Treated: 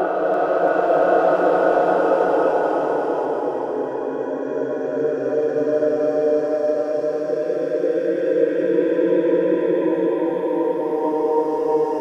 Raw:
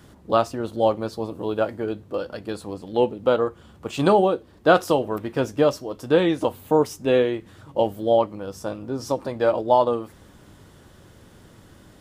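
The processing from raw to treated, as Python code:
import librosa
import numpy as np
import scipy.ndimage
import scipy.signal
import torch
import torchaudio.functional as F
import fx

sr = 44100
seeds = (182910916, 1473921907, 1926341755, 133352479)

p1 = x + 0.5 * 10.0 ** (-15.5 / 20.0) * np.diff(np.sign(x), prepend=np.sign(x[:1]))
p2 = scipy.signal.sosfilt(scipy.signal.butter(2, 1100.0, 'lowpass', fs=sr, output='sos'), p1)
p3 = fx.noise_reduce_blind(p2, sr, reduce_db=22)
p4 = scipy.signal.sosfilt(scipy.signal.butter(2, 350.0, 'highpass', fs=sr, output='sos'), p3)
p5 = np.clip(10.0 ** (19.5 / 20.0) * p4, -1.0, 1.0) / 10.0 ** (19.5 / 20.0)
p6 = p4 + F.gain(torch.from_numpy(p5), -11.5).numpy()
p7 = fx.paulstretch(p6, sr, seeds[0], factor=5.2, window_s=1.0, from_s=4.48)
p8 = fx.echo_feedback(p7, sr, ms=341, feedback_pct=54, wet_db=-5.5)
y = F.gain(torch.from_numpy(p8), 2.0).numpy()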